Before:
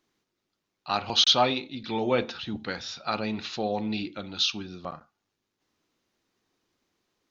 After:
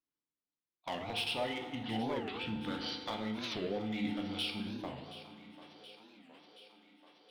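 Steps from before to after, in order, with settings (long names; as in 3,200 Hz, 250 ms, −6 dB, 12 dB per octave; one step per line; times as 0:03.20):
noise gate −39 dBFS, range −21 dB
in parallel at −1 dB: brickwall limiter −19 dBFS, peak gain reduction 10.5 dB
on the sum: downward compressor 3 to 1, threshold −28 dBFS, peak gain reduction 11 dB
hard clipping −23.5 dBFS, distortion −15 dB
on a send: feedback echo with a high-pass in the loop 725 ms, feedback 69%, high-pass 230 Hz, level −15 dB
on the sum: feedback delay network reverb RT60 1.7 s, low-frequency decay 1×, high-frequency decay 0.55×, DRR 3 dB
formants moved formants −3 semitones
wow of a warped record 45 rpm, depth 250 cents
level −8 dB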